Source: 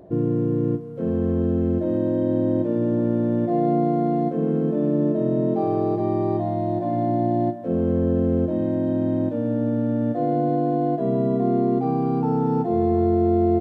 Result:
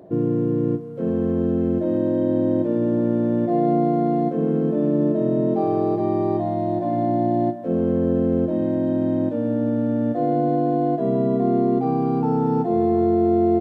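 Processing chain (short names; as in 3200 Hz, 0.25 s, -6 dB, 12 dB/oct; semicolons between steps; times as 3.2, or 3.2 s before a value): HPF 120 Hz; gain +1.5 dB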